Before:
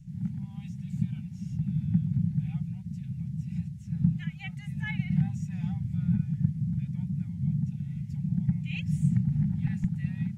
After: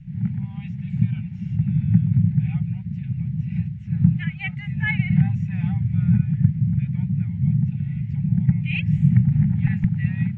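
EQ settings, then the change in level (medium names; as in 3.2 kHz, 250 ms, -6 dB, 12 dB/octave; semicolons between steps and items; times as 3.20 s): peaking EQ 320 Hz -7 dB 0.56 oct; dynamic bell 110 Hz, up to +6 dB, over -44 dBFS, Q 3.8; resonant low-pass 2.3 kHz, resonance Q 1.9; +7.5 dB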